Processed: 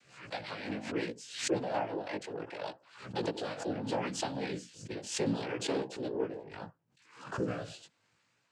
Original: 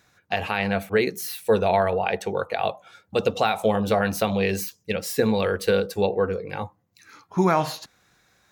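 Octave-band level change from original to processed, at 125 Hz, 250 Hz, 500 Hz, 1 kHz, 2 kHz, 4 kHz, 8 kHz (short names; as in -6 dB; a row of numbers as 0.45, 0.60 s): -13.0, -10.0, -14.0, -14.5, -13.5, -8.5, -6.0 dB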